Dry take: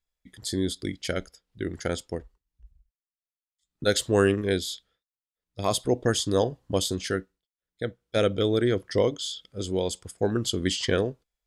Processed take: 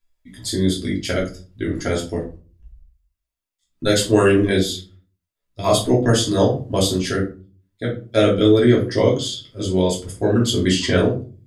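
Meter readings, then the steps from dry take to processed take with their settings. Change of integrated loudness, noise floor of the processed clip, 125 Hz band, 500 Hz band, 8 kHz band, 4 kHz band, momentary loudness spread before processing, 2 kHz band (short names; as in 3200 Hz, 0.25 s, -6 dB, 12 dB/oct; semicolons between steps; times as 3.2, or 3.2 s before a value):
+8.0 dB, -81 dBFS, +10.0 dB, +7.5 dB, +6.0 dB, +6.5 dB, 12 LU, +6.5 dB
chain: shoebox room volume 190 m³, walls furnished, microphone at 2.9 m; gain +1.5 dB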